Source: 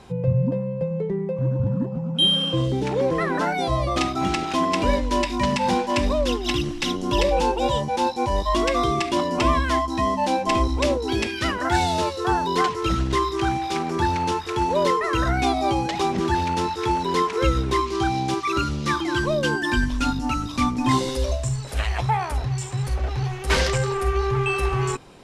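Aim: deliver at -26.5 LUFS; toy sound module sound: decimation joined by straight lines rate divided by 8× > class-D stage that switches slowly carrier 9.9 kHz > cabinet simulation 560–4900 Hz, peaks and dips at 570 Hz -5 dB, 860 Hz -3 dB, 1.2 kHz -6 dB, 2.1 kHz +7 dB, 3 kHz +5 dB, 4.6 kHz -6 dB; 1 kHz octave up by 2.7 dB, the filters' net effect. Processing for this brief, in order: peaking EQ 1 kHz +8 dB; decimation joined by straight lines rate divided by 8×; class-D stage that switches slowly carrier 9.9 kHz; cabinet simulation 560–4900 Hz, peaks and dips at 570 Hz -5 dB, 860 Hz -3 dB, 1.2 kHz -6 dB, 2.1 kHz +7 dB, 3 kHz +5 dB, 4.6 kHz -6 dB; trim -2.5 dB

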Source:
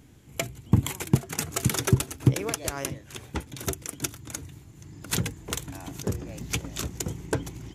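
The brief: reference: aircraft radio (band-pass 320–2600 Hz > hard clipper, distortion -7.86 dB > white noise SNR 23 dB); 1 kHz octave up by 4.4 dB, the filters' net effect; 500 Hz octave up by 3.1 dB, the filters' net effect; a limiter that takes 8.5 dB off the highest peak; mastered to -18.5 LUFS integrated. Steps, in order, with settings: peaking EQ 500 Hz +4.5 dB; peaking EQ 1 kHz +4.5 dB; peak limiter -14.5 dBFS; band-pass 320–2600 Hz; hard clipper -30.5 dBFS; white noise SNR 23 dB; trim +20.5 dB

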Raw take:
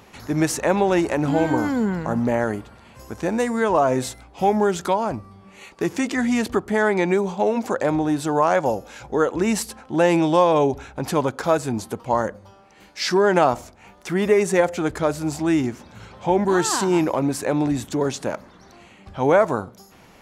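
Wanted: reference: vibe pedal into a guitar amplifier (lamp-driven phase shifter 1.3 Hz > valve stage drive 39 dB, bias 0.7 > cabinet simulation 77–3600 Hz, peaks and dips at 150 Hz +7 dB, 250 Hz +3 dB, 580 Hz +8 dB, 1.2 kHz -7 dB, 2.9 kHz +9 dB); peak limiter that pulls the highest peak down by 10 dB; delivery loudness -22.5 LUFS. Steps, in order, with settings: peak limiter -14 dBFS; lamp-driven phase shifter 1.3 Hz; valve stage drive 39 dB, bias 0.7; cabinet simulation 77–3600 Hz, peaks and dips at 150 Hz +7 dB, 250 Hz +3 dB, 580 Hz +8 dB, 1.2 kHz -7 dB, 2.9 kHz +9 dB; trim +17 dB

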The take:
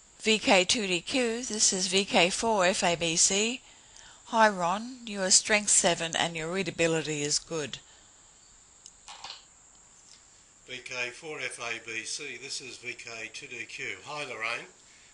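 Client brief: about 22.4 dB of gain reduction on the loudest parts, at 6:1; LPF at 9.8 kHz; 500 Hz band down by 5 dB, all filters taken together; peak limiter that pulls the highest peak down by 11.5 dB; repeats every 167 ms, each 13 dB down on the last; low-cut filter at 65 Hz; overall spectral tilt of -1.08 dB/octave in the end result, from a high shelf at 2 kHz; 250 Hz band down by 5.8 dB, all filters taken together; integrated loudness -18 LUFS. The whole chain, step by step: high-pass 65 Hz; low-pass 9.8 kHz; peaking EQ 250 Hz -6.5 dB; peaking EQ 500 Hz -5 dB; treble shelf 2 kHz +3 dB; compression 6:1, threshold -40 dBFS; peak limiter -34 dBFS; feedback delay 167 ms, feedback 22%, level -13 dB; trim +26.5 dB

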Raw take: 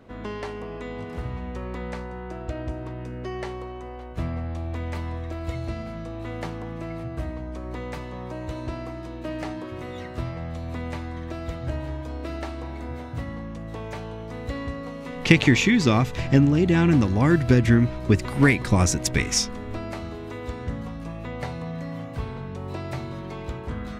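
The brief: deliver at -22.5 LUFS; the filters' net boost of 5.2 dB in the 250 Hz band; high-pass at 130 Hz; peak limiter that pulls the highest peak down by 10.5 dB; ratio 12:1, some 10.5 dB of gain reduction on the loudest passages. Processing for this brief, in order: high-pass 130 Hz; peaking EQ 250 Hz +7 dB; compression 12:1, threshold -19 dBFS; trim +8 dB; peak limiter -9 dBFS

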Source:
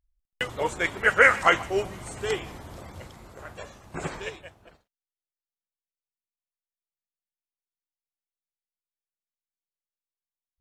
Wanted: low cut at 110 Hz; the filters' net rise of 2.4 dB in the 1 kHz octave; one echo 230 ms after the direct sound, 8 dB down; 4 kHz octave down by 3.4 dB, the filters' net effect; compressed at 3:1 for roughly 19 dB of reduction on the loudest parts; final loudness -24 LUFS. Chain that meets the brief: high-pass 110 Hz; peaking EQ 1 kHz +4 dB; peaking EQ 4 kHz -6 dB; compression 3:1, threshold -38 dBFS; delay 230 ms -8 dB; trim +15 dB

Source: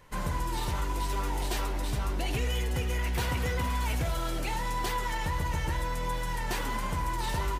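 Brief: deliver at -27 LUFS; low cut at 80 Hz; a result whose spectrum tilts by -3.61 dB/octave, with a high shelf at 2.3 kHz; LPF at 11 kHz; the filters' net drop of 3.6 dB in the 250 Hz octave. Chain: high-pass 80 Hz; low-pass 11 kHz; peaking EQ 250 Hz -5.5 dB; treble shelf 2.3 kHz +7.5 dB; trim +4.5 dB

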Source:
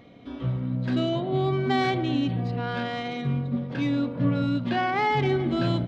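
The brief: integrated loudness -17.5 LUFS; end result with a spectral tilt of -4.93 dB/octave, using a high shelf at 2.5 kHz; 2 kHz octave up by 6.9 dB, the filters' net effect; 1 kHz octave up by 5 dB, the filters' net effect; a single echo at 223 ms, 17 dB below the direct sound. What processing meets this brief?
peaking EQ 1 kHz +6 dB; peaking EQ 2 kHz +8.5 dB; treble shelf 2.5 kHz -4.5 dB; delay 223 ms -17 dB; trim +6.5 dB

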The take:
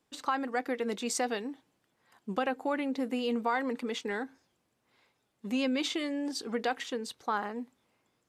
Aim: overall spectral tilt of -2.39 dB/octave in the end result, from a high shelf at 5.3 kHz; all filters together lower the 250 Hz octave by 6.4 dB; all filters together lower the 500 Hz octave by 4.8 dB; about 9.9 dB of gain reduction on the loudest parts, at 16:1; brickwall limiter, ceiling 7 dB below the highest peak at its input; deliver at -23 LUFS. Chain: peaking EQ 250 Hz -6 dB; peaking EQ 500 Hz -4 dB; treble shelf 5.3 kHz +6.5 dB; compression 16:1, threshold -36 dBFS; trim +19.5 dB; peak limiter -11.5 dBFS

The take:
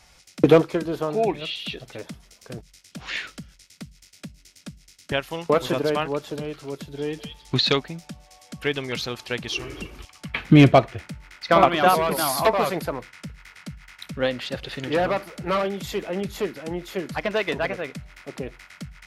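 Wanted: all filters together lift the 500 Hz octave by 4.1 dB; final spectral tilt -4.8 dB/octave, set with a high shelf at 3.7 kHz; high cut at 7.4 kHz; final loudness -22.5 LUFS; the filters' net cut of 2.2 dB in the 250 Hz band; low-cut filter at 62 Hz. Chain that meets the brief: high-pass 62 Hz; low-pass 7.4 kHz; peaking EQ 250 Hz -5.5 dB; peaking EQ 500 Hz +6 dB; treble shelf 3.7 kHz +7.5 dB; trim -1.5 dB

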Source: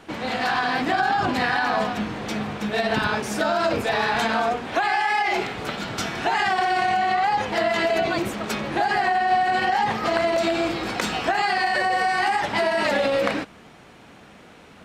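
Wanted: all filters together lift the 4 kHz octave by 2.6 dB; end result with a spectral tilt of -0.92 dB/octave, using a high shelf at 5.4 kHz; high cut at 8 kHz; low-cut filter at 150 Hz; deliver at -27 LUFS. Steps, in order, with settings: high-pass 150 Hz; low-pass 8 kHz; peaking EQ 4 kHz +5 dB; treble shelf 5.4 kHz -4 dB; trim -4.5 dB

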